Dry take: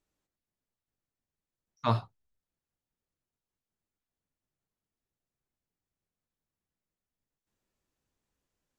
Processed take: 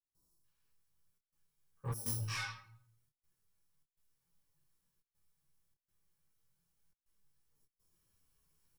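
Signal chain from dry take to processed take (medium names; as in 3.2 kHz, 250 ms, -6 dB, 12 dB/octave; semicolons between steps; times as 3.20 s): bit-reversed sample order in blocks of 64 samples; peak limiter -16.5 dBFS, peak gain reduction 4 dB; three bands offset in time lows, highs, mids 80/440 ms, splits 1.1/4.3 kHz; reverberation RT60 0.60 s, pre-delay 11 ms, DRR -3.5 dB; trance gate ".xxxxxxx.xxxx" 102 bpm -24 dB; bass shelf 240 Hz -9 dB; saturation -36.5 dBFS, distortion -10 dB; fifteen-band graphic EQ 250 Hz -8 dB, 630 Hz -8 dB, 2.5 kHz -6 dB; detune thickener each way 15 cents; trim +8.5 dB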